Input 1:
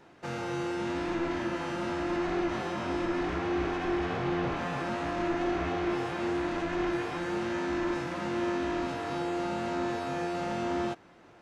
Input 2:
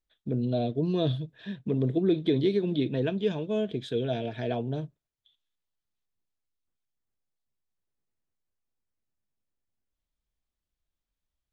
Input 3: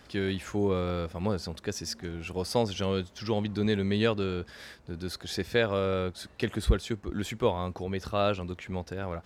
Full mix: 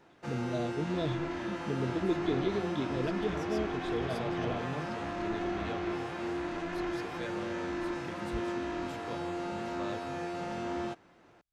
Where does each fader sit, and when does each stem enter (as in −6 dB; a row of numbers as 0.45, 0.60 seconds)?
−4.5, −7.0, −16.5 decibels; 0.00, 0.00, 1.65 seconds